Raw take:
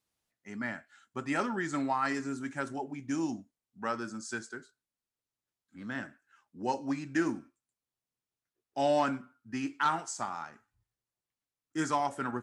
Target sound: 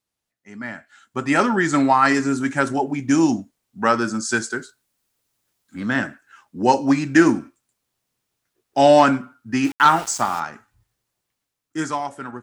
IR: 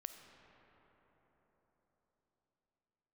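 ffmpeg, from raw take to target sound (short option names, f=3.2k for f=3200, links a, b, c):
-filter_complex "[0:a]asettb=1/sr,asplit=3[a][b][c];[a]atrim=end=4.344[d];[b]atrim=start=4.34:end=5.81,asetpts=PTS-STARTPTS,afade=t=in:d=0.004:c=qsin,afade=t=out:st=1.466:d=0.004:c=qsin,highshelf=f=7.3k:g=5.5[e];[c]atrim=start=5.806[f];[d][e]acrossfade=d=0.004:c1=hsin:c2=qsin[g];[g][f]acrossfade=d=0.004:c1=qsin:c2=hsin,asettb=1/sr,asplit=3[h][i][j];[h]atrim=end=9.644[k];[i]atrim=start=9.64:end=10.4,asetpts=PTS-STARTPTS,afade=t=in:d=0.004:c=qsin,afade=t=out:st=0.756:d=0.004:c=qsin,aeval=exprs='val(0)*gte(abs(val(0)),0.00473)':c=same[l];[j]atrim=start=10.396[m];[k][l]acrossfade=d=0.004:c1=hsin:c2=qsin[n];[n][m]acrossfade=d=0.004:c1=qsin:c2=hsin,dynaudnorm=f=100:g=21:m=16dB,volume=1dB"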